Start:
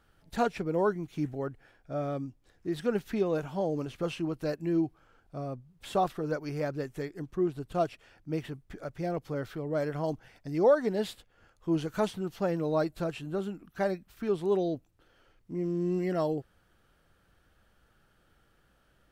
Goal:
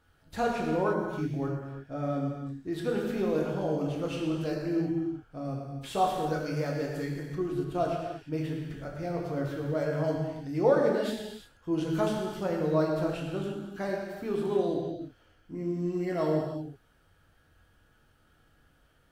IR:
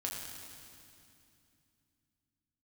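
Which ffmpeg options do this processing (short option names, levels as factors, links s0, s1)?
-filter_complex "[1:a]atrim=start_sample=2205,afade=t=out:st=0.41:d=0.01,atrim=end_sample=18522[s0];[0:a][s0]afir=irnorm=-1:irlink=0,asplit=3[s1][s2][s3];[s1]afade=t=out:st=5.44:d=0.02[s4];[s2]adynamicequalizer=threshold=0.00447:dfrequency=2500:dqfactor=0.7:tfrequency=2500:tqfactor=0.7:attack=5:release=100:ratio=0.375:range=2:mode=boostabove:tftype=highshelf,afade=t=in:st=5.44:d=0.02,afade=t=out:st=7.63:d=0.02[s5];[s3]afade=t=in:st=7.63:d=0.02[s6];[s4][s5][s6]amix=inputs=3:normalize=0"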